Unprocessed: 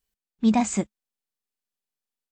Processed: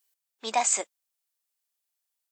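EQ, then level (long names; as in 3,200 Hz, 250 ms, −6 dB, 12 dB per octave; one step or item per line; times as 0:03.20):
high-pass filter 500 Hz 24 dB per octave
high-shelf EQ 5,000 Hz +9.5 dB
+1.0 dB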